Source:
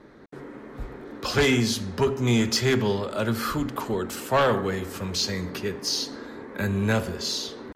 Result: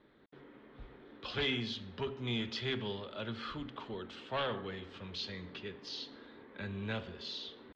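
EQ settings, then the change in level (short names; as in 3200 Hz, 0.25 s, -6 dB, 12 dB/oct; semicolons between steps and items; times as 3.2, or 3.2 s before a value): ladder low-pass 3800 Hz, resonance 60%; -5.0 dB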